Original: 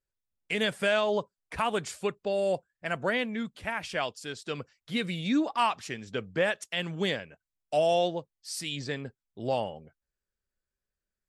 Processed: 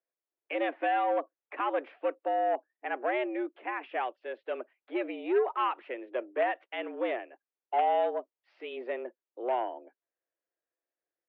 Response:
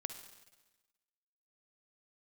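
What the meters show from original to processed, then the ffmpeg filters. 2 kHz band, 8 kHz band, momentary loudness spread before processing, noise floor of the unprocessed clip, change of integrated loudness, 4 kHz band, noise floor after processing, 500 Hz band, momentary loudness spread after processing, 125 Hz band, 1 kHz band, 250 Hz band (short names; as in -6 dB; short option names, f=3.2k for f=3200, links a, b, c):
-5.0 dB, under -35 dB, 12 LU, under -85 dBFS, -2.0 dB, -13.5 dB, under -85 dBFS, -1.5 dB, 11 LU, under -40 dB, +2.5 dB, -5.5 dB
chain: -af "tiltshelf=f=970:g=4.5,aeval=exprs='0.211*(cos(1*acos(clip(val(0)/0.211,-1,1)))-cos(1*PI/2))+0.0531*(cos(3*acos(clip(val(0)/0.211,-1,1)))-cos(3*PI/2))+0.0299*(cos(5*acos(clip(val(0)/0.211,-1,1)))-cos(5*PI/2))':c=same,highpass=f=220:t=q:w=0.5412,highpass=f=220:t=q:w=1.307,lowpass=f=2.6k:t=q:w=0.5176,lowpass=f=2.6k:t=q:w=0.7071,lowpass=f=2.6k:t=q:w=1.932,afreqshift=120"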